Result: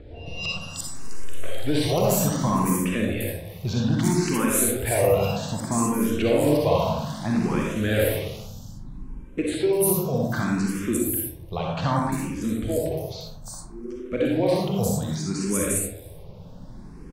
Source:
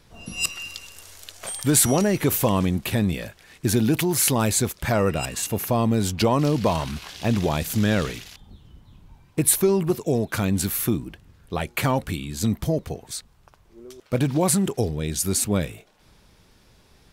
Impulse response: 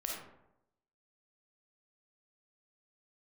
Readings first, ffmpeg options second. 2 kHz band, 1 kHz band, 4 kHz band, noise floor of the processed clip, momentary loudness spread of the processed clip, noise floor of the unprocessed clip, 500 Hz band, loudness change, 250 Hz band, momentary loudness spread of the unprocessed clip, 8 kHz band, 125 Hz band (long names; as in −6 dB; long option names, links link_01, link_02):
−1.0 dB, 0.0 dB, −3.0 dB, −41 dBFS, 18 LU, −57 dBFS, +1.5 dB, −1.0 dB, −0.5 dB, 14 LU, −4.0 dB, −2.0 dB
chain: -filter_complex "[0:a]acrossover=split=660|1300[link_01][link_02][link_03];[link_01]acompressor=mode=upward:threshold=-25dB:ratio=2.5[link_04];[link_04][link_02][link_03]amix=inputs=3:normalize=0,acrossover=split=5600[link_05][link_06];[link_06]adelay=350[link_07];[link_05][link_07]amix=inputs=2:normalize=0[link_08];[1:a]atrim=start_sample=2205,asetrate=36603,aresample=44100[link_09];[link_08][link_09]afir=irnorm=-1:irlink=0,asplit=2[link_10][link_11];[link_11]afreqshift=0.63[link_12];[link_10][link_12]amix=inputs=2:normalize=1"